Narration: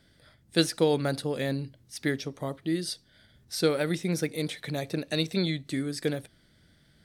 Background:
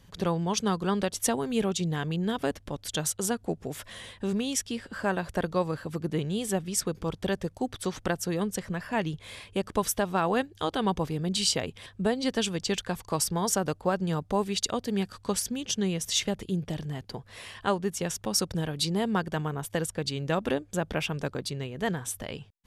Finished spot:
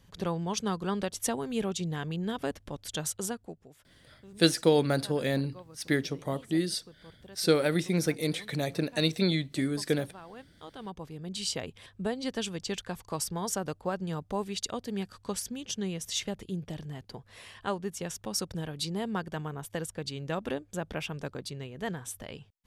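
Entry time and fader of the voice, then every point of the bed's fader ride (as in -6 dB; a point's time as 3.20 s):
3.85 s, +1.0 dB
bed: 3.24 s -4 dB
3.77 s -21.5 dB
10.32 s -21.5 dB
11.60 s -5.5 dB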